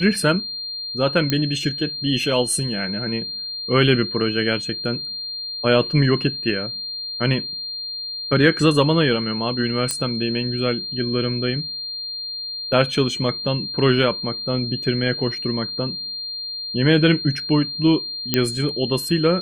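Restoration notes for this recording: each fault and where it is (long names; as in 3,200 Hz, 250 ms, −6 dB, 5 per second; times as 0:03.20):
whistle 4,200 Hz −27 dBFS
0:01.30: click −6 dBFS
0:09.91: click −7 dBFS
0:18.34: click −2 dBFS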